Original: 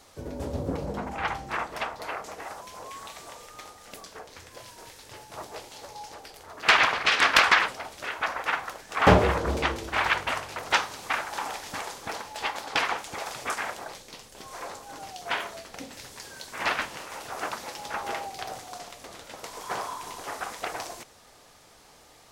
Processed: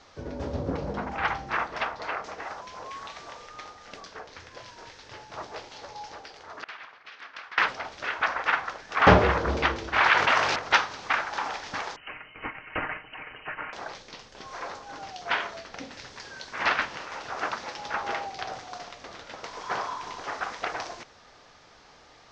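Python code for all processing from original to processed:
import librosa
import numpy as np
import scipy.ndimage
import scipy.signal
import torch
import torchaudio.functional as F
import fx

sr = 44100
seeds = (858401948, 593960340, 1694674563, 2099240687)

y = fx.chain(x, sr, fx.low_shelf(hz=110.0, db=-8.5),
    fx.gate_flip(shuts_db=-24.0, range_db=-26), at=(6.22, 7.58))
y = fx.chain(y, sr, fx.highpass(hz=250.0, slope=6),
    fx.env_flatten(amount_pct=70), at=(10.0, 10.56))
y = fx.chain(y, sr, fx.peak_eq(hz=720.0, db=-11.5, octaves=3.0),
    fx.comb(ms=6.3, depth=0.48),
    fx.freq_invert(carrier_hz=3000), at=(11.96, 13.73))
y = scipy.signal.sosfilt(scipy.signal.butter(6, 6100.0, 'lowpass', fs=sr, output='sos'), y)
y = fx.peak_eq(y, sr, hz=1500.0, db=4.0, octaves=1.1)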